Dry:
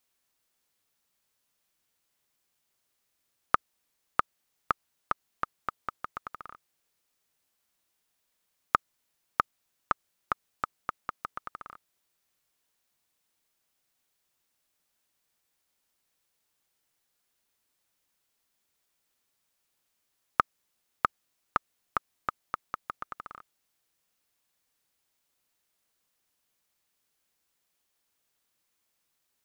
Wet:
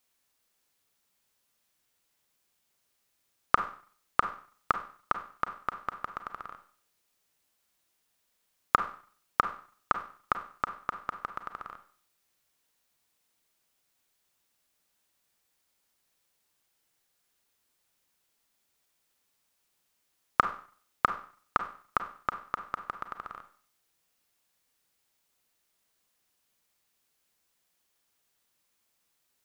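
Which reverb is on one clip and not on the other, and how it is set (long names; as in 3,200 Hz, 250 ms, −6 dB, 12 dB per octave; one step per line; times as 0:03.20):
four-comb reverb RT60 0.47 s, combs from 32 ms, DRR 8.5 dB
level +1.5 dB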